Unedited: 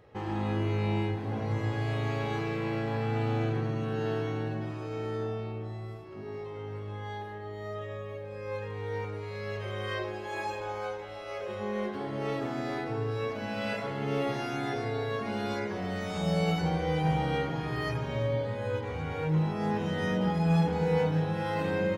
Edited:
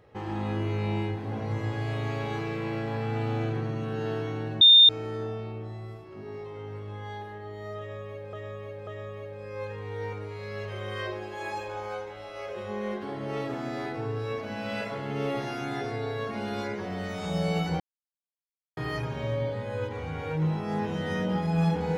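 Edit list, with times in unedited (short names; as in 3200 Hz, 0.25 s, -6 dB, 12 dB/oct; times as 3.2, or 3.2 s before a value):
4.61–4.89 bleep 3630 Hz -11 dBFS
7.79–8.33 loop, 3 plays
16.72–17.69 mute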